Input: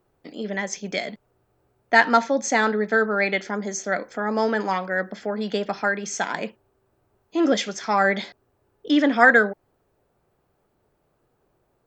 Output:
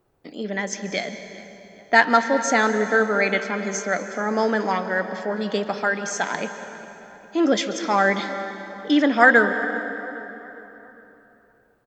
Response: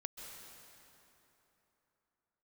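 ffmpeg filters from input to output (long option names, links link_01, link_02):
-filter_complex "[0:a]asplit=2[link_01][link_02];[link_02]adelay=405,lowpass=frequency=2500:poles=1,volume=-18dB,asplit=2[link_03][link_04];[link_04]adelay=405,lowpass=frequency=2500:poles=1,volume=0.53,asplit=2[link_05][link_06];[link_06]adelay=405,lowpass=frequency=2500:poles=1,volume=0.53,asplit=2[link_07][link_08];[link_08]adelay=405,lowpass=frequency=2500:poles=1,volume=0.53[link_09];[link_01][link_03][link_05][link_07][link_09]amix=inputs=5:normalize=0,asplit=2[link_10][link_11];[1:a]atrim=start_sample=2205[link_12];[link_11][link_12]afir=irnorm=-1:irlink=0,volume=1.5dB[link_13];[link_10][link_13]amix=inputs=2:normalize=0,volume=-4dB"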